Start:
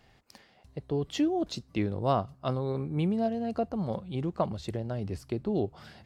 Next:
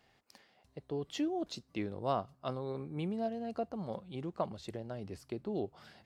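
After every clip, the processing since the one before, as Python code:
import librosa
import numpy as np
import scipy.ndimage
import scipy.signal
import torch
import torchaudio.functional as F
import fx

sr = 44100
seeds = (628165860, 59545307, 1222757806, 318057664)

y = fx.low_shelf(x, sr, hz=130.0, db=-11.5)
y = y * librosa.db_to_amplitude(-5.5)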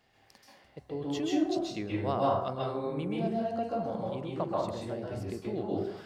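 y = fx.rev_plate(x, sr, seeds[0], rt60_s=0.73, hf_ratio=0.55, predelay_ms=120, drr_db=-5.0)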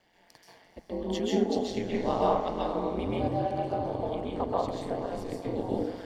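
y = fx.notch_comb(x, sr, f0_hz=1300.0)
y = fx.echo_diffused(y, sr, ms=458, feedback_pct=41, wet_db=-10.0)
y = y * np.sin(2.0 * np.pi * 90.0 * np.arange(len(y)) / sr)
y = y * librosa.db_to_amplitude(5.5)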